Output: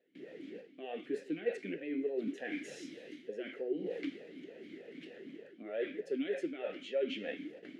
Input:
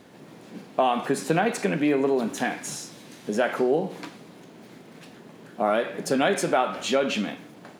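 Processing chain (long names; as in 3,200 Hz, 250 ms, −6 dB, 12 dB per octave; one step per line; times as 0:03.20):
noise gate with hold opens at −38 dBFS
reversed playback
downward compressor 12 to 1, threshold −32 dBFS, peak gain reduction 16.5 dB
reversed playback
formant filter swept between two vowels e-i 3.3 Hz
level +7.5 dB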